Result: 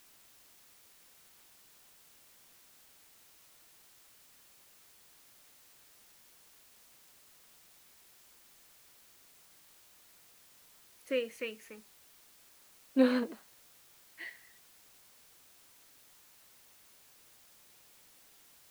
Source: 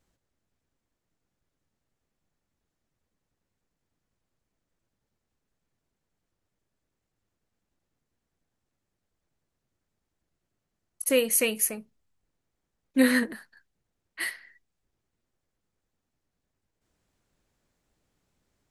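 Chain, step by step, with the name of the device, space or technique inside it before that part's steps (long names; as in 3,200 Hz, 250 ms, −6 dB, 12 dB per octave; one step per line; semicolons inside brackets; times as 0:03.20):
shortwave radio (band-pass filter 300–2,700 Hz; amplitude tremolo 0.39 Hz, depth 68%; auto-filter notch saw down 0.24 Hz 520–2,400 Hz; white noise bed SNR 18 dB)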